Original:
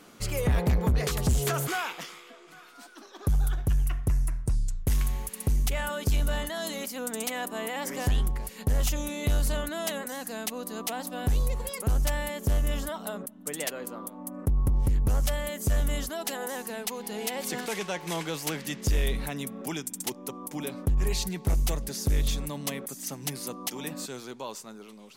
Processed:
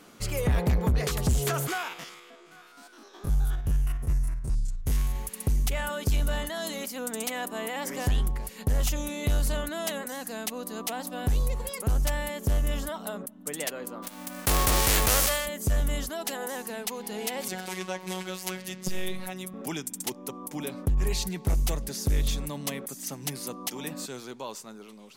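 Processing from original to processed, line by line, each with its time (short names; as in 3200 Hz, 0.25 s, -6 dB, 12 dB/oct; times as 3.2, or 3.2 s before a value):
1.73–5.16 stepped spectrum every 50 ms
14.02–15.45 spectral whitening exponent 0.3
17.48–19.54 robotiser 185 Hz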